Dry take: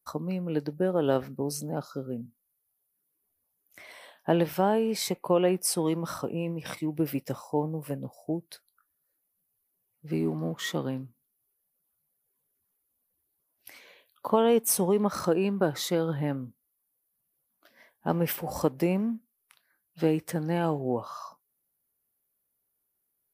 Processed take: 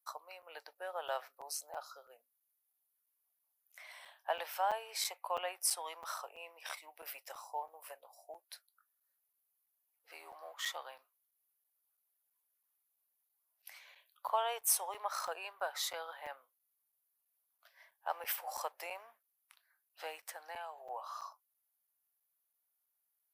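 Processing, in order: steep high-pass 670 Hz 36 dB/octave; 20.17–20.78 s: compression 5:1, threshold -38 dBFS, peak gain reduction 9 dB; crackling interface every 0.33 s, samples 256, zero, from 0.42 s; trim -4.5 dB

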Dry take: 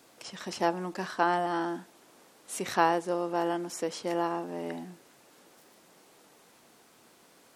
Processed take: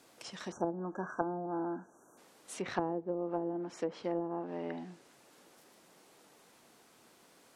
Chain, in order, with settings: low-pass that closes with the level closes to 420 Hz, closed at -24.5 dBFS; spectral selection erased 0.52–2.18 s, 1.7–5.7 kHz; trim -3 dB

